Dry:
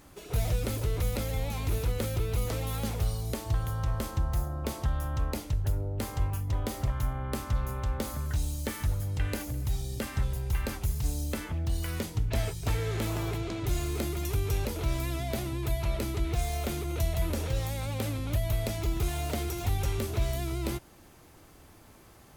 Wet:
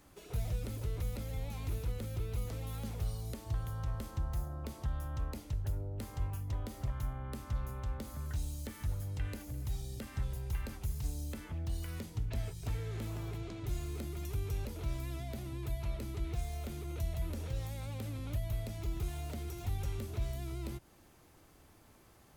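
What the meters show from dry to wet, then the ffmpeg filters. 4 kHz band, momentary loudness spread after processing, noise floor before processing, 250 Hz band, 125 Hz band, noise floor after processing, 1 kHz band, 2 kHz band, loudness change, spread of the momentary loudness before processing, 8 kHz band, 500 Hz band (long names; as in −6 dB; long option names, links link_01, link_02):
−11.5 dB, 3 LU, −54 dBFS, −9.0 dB, −7.0 dB, −62 dBFS, −11.0 dB, −11.5 dB, −8.0 dB, 3 LU, −11.0 dB, −11.0 dB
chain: -filter_complex "[0:a]acrossover=split=260[link_01][link_02];[link_02]acompressor=threshold=-40dB:ratio=4[link_03];[link_01][link_03]amix=inputs=2:normalize=0,volume=-7dB"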